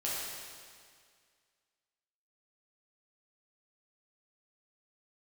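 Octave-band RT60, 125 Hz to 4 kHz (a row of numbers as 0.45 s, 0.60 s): 2.0 s, 2.0 s, 2.0 s, 2.0 s, 2.0 s, 1.9 s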